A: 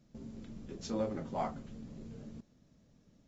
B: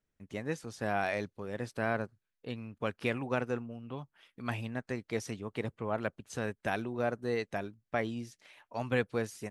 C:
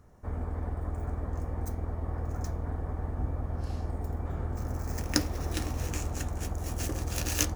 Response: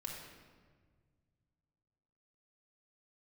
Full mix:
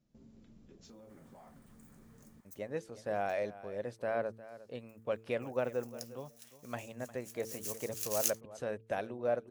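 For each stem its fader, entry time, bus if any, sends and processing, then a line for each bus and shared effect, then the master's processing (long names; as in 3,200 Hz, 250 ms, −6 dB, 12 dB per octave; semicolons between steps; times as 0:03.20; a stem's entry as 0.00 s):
−11.0 dB, 0.00 s, no send, no echo send, brickwall limiter −32.5 dBFS, peak gain reduction 9.5 dB; downward compressor, threshold −41 dBFS, peak gain reduction 5 dB
−8.0 dB, 2.25 s, no send, echo send −16.5 dB, parametric band 560 Hz +11.5 dB 0.68 octaves; hum removal 111.6 Hz, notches 4
0:02.21 −3.5 dB → 0:02.87 −16 dB → 0:07.01 −16 dB → 0:07.49 −3 dB, 0.85 s, no send, no echo send, Bessel high-pass filter 1,200 Hz; first difference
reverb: not used
echo: single-tap delay 356 ms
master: no processing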